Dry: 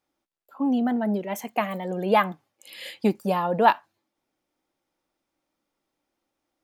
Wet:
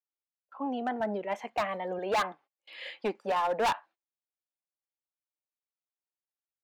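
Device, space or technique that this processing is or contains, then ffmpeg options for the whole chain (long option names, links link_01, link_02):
walkie-talkie: -filter_complex "[0:a]highpass=520,lowpass=2700,asoftclip=type=hard:threshold=-24dB,agate=range=-26dB:threshold=-55dB:ratio=16:detection=peak,asettb=1/sr,asplit=3[link_01][link_02][link_03];[link_01]atrim=end=1.004[link_04];[link_02]atrim=start=1:end=1.99,asetpts=PTS-STARTPTS,afade=type=in:duration=0.004:curve=qsin,afade=type=out:start_time=0.986:duration=0.004:curve=qsin,equalizer=frequency=95:width=0.94:gain=14[link_05];[link_03]atrim=start=1.986[link_06];[link_04][link_05]acrossfade=duration=0.004:curve1=hsin:curve2=qsin[link_07];[link_07][link_06]acrossfade=duration=0.004:curve1=qsin:curve2=hsin"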